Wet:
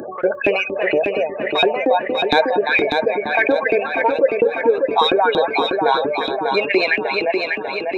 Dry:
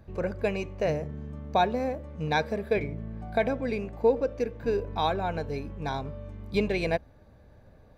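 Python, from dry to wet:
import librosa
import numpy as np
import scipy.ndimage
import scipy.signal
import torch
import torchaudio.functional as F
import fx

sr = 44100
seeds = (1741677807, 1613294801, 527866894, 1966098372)

p1 = fx.spec_gate(x, sr, threshold_db=-25, keep='strong')
p2 = scipy.signal.sosfilt(scipy.signal.butter(2, 86.0, 'highpass', fs=sr, output='sos'), p1)
p3 = fx.high_shelf(p2, sr, hz=3300.0, db=12.0)
p4 = p3 + 10.0 ** (-12.5 / 20.0) * np.pad(p3, (int(350 * sr / 1000.0), 0))[:len(p3)]
p5 = 10.0 ** (-22.5 / 20.0) * np.tanh(p4 / 10.0 ** (-22.5 / 20.0))
p6 = p4 + (p5 * librosa.db_to_amplitude(-10.0))
p7 = fx.filter_lfo_highpass(p6, sr, shape='saw_up', hz=4.3, low_hz=290.0, high_hz=3100.0, q=3.9)
p8 = fx.echo_feedback(p7, sr, ms=595, feedback_pct=42, wet_db=-9)
p9 = fx.env_flatten(p8, sr, amount_pct=50)
y = p9 * librosa.db_to_amplitude(1.5)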